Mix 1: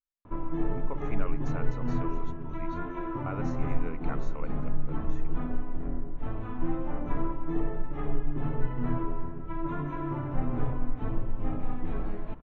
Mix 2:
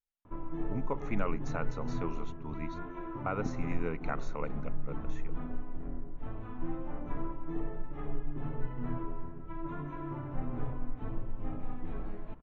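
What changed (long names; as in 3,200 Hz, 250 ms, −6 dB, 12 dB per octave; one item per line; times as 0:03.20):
speech +4.0 dB
background −6.5 dB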